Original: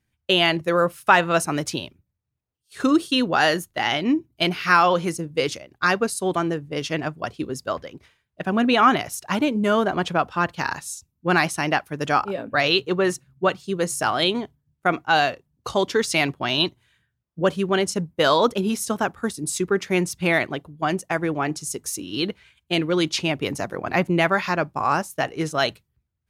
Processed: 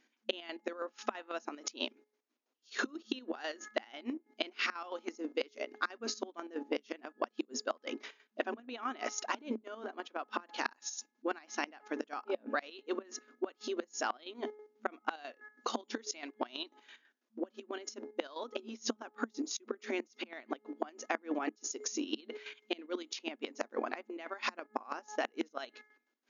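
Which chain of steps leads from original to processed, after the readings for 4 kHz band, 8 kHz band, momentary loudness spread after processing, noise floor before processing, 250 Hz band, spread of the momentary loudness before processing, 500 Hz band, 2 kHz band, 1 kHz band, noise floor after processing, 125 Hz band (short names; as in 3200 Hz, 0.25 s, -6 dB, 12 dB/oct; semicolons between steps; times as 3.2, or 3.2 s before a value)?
-17.5 dB, -12.0 dB, 7 LU, -77 dBFS, -17.0 dB, 10 LU, -16.5 dB, -17.5 dB, -18.5 dB, -81 dBFS, under -35 dB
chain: octaver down 2 oct, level -5 dB; de-hum 423.2 Hz, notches 5; chopper 6.1 Hz, depth 65%, duty 45%; flipped gate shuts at -17 dBFS, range -27 dB; compressor 6:1, threshold -40 dBFS, peak gain reduction 16.5 dB; FFT band-pass 220–7000 Hz; gain +8.5 dB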